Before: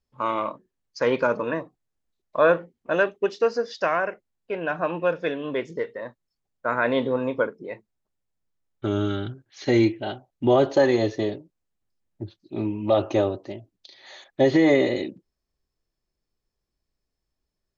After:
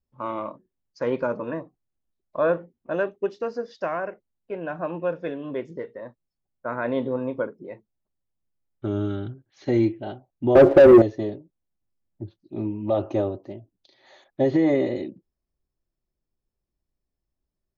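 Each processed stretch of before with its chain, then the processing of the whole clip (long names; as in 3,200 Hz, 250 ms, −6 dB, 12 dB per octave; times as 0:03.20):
0:10.55–0:11.02: low-pass filter 1,800 Hz 24 dB per octave + hollow resonant body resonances 360/530 Hz, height 10 dB, ringing for 70 ms + leveller curve on the samples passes 3
whole clip: tilt shelving filter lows +6 dB, about 1,200 Hz; notch filter 450 Hz, Q 12; level −6.5 dB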